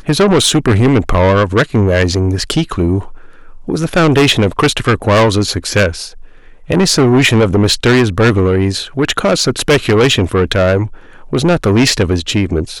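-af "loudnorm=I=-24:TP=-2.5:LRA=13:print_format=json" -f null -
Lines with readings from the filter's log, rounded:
"input_i" : "-12.4",
"input_tp" : "-1.8",
"input_lra" : "1.8",
"input_thresh" : "-22.8",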